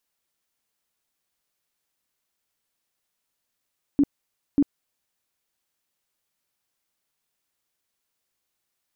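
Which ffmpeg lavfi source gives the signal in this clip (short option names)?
-f lavfi -i "aevalsrc='0.2*sin(2*PI*284*mod(t,0.59))*lt(mod(t,0.59),13/284)':d=1.18:s=44100"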